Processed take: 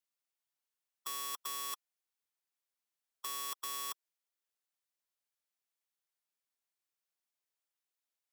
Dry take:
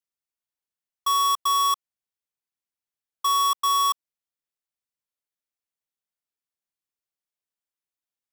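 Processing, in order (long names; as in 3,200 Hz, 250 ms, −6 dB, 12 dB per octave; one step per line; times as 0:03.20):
Bessel high-pass filter 440 Hz, order 2
every bin compressed towards the loudest bin 2 to 1
level −5.5 dB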